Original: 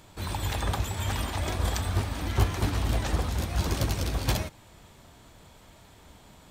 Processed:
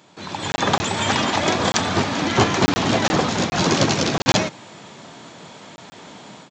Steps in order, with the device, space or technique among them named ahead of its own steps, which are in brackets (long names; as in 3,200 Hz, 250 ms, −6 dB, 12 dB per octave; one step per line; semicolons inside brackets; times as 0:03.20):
call with lost packets (high-pass filter 150 Hz 24 dB per octave; downsampling to 16,000 Hz; automatic gain control gain up to 12 dB; dropped packets of 20 ms random)
level +2.5 dB